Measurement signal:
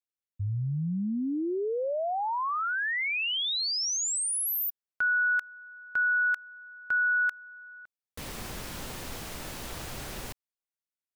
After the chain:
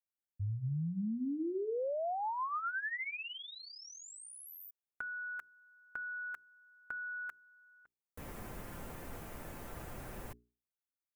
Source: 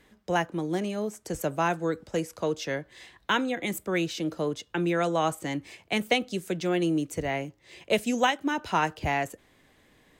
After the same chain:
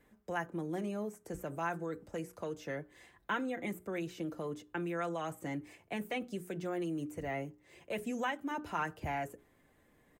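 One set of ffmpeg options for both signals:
ffmpeg -i in.wav -filter_complex "[0:a]equalizer=frequency=4100:width=0.66:gain=-13.5,bandreject=frequency=60:width_type=h:width=6,bandreject=frequency=120:width_type=h:width=6,bandreject=frequency=180:width_type=h:width=6,bandreject=frequency=240:width_type=h:width=6,bandreject=frequency=300:width_type=h:width=6,bandreject=frequency=360:width_type=h:width=6,bandreject=frequency=420:width_type=h:width=6,acrossover=split=1200[link_01][link_02];[link_01]alimiter=level_in=2dB:limit=-24dB:level=0:latency=1,volume=-2dB[link_03];[link_02]aecho=1:1:5.8:0.83[link_04];[link_03][link_04]amix=inputs=2:normalize=0,acrossover=split=3000[link_05][link_06];[link_06]acompressor=threshold=-47dB:ratio=4:attack=1:release=60[link_07];[link_05][link_07]amix=inputs=2:normalize=0,volume=-5dB" out.wav

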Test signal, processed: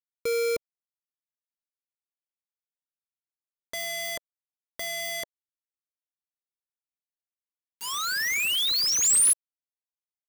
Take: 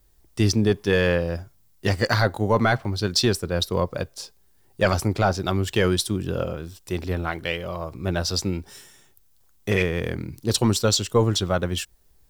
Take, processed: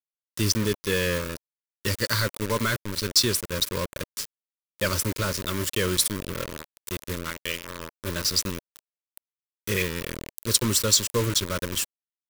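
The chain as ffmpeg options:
ffmpeg -i in.wav -af "aemphasis=mode=production:type=75kf,acrusher=bits=3:mix=0:aa=0.000001,asuperstop=centerf=750:order=4:qfactor=2.3,volume=-6dB" out.wav

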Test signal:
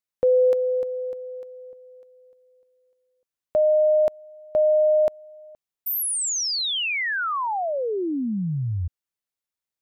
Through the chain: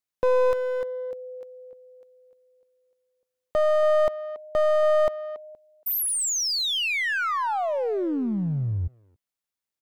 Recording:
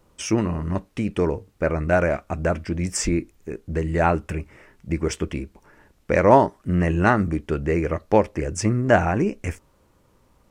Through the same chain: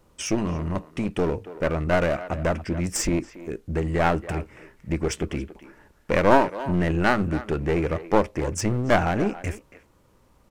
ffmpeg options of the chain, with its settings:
ffmpeg -i in.wav -filter_complex "[0:a]aeval=exprs='clip(val(0),-1,0.0631)':channel_layout=same,asplit=2[link_01][link_02];[link_02]adelay=280,highpass=300,lowpass=3400,asoftclip=type=hard:threshold=-10dB,volume=-14dB[link_03];[link_01][link_03]amix=inputs=2:normalize=0" out.wav

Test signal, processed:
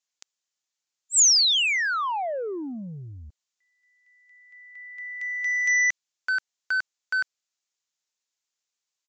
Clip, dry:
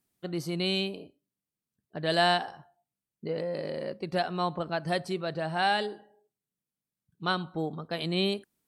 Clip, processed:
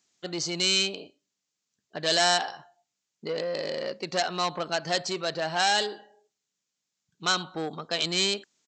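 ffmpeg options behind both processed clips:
ffmpeg -i in.wav -af "aresample=16000,asoftclip=type=tanh:threshold=-26dB,aresample=44100,aemphasis=mode=production:type=riaa,volume=6dB" out.wav

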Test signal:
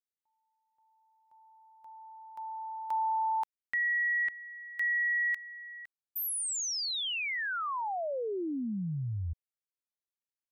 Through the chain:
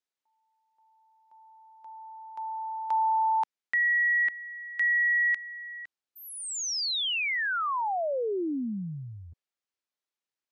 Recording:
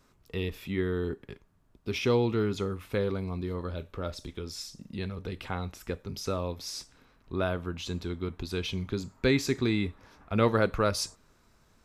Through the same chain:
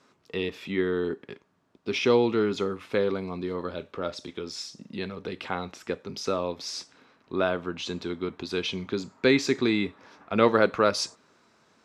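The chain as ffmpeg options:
ffmpeg -i in.wav -af "highpass=220,lowpass=6200,volume=5dB" out.wav

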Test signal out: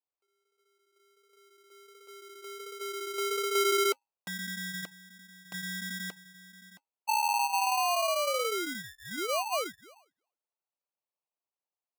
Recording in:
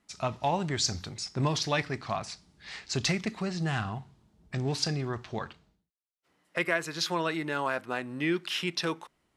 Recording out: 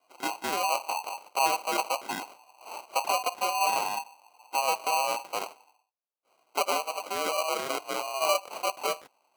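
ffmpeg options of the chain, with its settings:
ffmpeg -i in.wav -filter_complex "[0:a]lowpass=frequency=2300:width_type=q:width=0.5098,lowpass=frequency=2300:width_type=q:width=0.6013,lowpass=frequency=2300:width_type=q:width=0.9,lowpass=frequency=2300:width_type=q:width=2.563,afreqshift=-2700,asplit=2[link_01][link_02];[link_02]alimiter=level_in=0.5dB:limit=-24dB:level=0:latency=1:release=83,volume=-0.5dB,volume=-2dB[link_03];[link_01][link_03]amix=inputs=2:normalize=0,flanger=delay=1.9:depth=1.8:regen=-65:speed=1.4:shape=sinusoidal,acrusher=samples=25:mix=1:aa=0.000001,highpass=550,volume=5dB" out.wav

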